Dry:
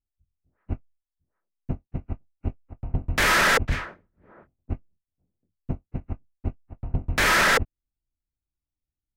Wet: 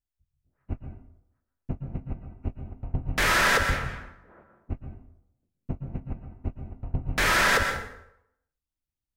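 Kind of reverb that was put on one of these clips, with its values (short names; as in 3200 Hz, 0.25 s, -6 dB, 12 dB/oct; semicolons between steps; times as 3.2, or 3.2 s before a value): plate-style reverb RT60 0.77 s, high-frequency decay 0.7×, pre-delay 0.105 s, DRR 5.5 dB; gain -3 dB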